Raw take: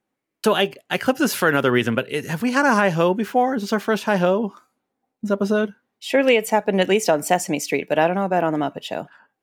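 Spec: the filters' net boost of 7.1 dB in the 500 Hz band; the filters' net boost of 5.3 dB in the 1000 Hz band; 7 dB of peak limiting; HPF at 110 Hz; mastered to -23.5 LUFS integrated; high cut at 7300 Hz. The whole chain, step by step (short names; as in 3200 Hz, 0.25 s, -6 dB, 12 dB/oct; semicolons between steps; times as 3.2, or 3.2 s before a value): HPF 110 Hz; LPF 7300 Hz; bell 500 Hz +7.5 dB; bell 1000 Hz +4 dB; gain -5.5 dB; limiter -11.5 dBFS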